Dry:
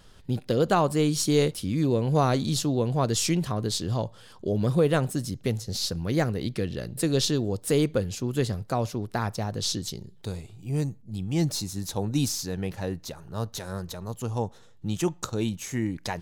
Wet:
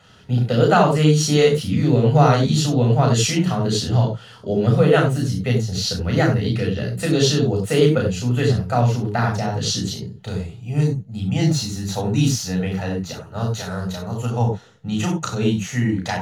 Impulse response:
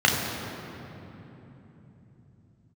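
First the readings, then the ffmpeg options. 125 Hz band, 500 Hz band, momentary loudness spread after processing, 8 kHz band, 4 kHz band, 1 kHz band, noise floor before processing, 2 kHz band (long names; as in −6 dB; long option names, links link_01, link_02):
+10.0 dB, +7.5 dB, 11 LU, +4.5 dB, +6.5 dB, +8.5 dB, −51 dBFS, +10.0 dB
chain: -filter_complex "[0:a]lowshelf=frequency=85:gain=-8[link_01];[1:a]atrim=start_sample=2205,atrim=end_sample=4410,asetrate=41895,aresample=44100[link_02];[link_01][link_02]afir=irnorm=-1:irlink=0,volume=-9dB"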